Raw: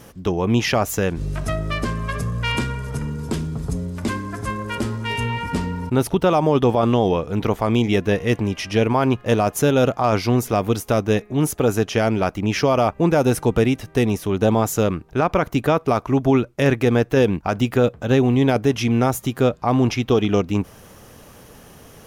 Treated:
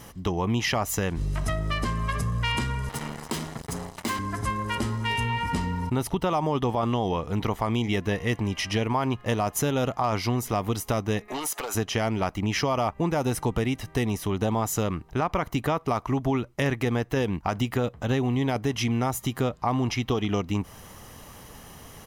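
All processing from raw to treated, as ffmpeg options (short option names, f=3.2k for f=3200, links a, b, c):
-filter_complex "[0:a]asettb=1/sr,asplit=3[a][b][c];[a]atrim=end=2.894[d];[b]atrim=start=2.89:end=4.19,asetpts=PTS-STARTPTS,afade=t=in:d=0.004:c=qsin,afade=t=out:st=1.296:d=0.004:c=qsin,highpass=82,lowshelf=f=180:g=-11.5,acrusher=bits=4:mix=0:aa=0.5[e];[c]atrim=start=4.186[f];[d][e]acrossfade=d=0.004:c1=hsin:c2=qsin[g];[g][f]acrossfade=d=0.004:c1=qsin:c2=hsin,asettb=1/sr,asplit=3[h][i][j];[h]atrim=end=11.284[k];[i]atrim=start=11.28:end=11.75,asetpts=PTS-STARTPTS,afade=t=in:d=0.004:c=qsin,afade=t=out:st=0.466:d=0.004:c=qsin,highpass=700,acompressor=threshold=-37dB:ratio=16:attack=3.2:release=140:knee=1:detection=peak,aeval=exprs='0.0631*sin(PI/2*3.55*val(0)/0.0631)':c=same[l];[j]atrim=start=11.746[m];[k][l]acrossfade=d=0.004:c1=hsin:c2=qsin[n];[n][m]acrossfade=d=0.004:c1=qsin:c2=hsin,equalizer=f=180:w=0.44:g=-3.5,aecho=1:1:1:0.32,acompressor=threshold=-24dB:ratio=2.5"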